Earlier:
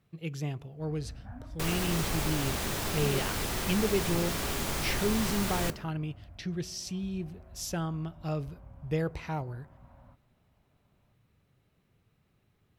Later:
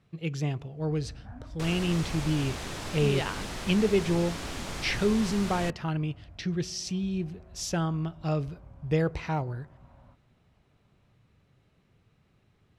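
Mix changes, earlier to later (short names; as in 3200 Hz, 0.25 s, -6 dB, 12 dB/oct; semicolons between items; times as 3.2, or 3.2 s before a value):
speech +4.5 dB; second sound: send off; master: add LPF 7800 Hz 12 dB/oct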